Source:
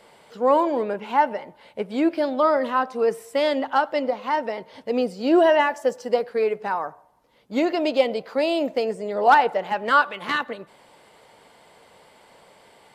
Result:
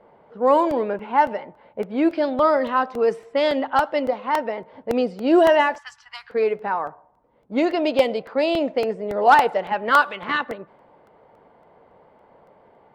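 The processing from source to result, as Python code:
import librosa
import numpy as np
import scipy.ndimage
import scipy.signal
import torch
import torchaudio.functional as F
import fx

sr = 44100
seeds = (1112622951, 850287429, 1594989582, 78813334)

y = fx.env_lowpass(x, sr, base_hz=1000.0, full_db=-13.5)
y = fx.cheby2_bandstop(y, sr, low_hz=200.0, high_hz=570.0, order=4, stop_db=50, at=(5.78, 6.3))
y = fx.buffer_crackle(y, sr, first_s=0.71, period_s=0.28, block=64, kind='repeat')
y = y * 10.0 ** (1.5 / 20.0)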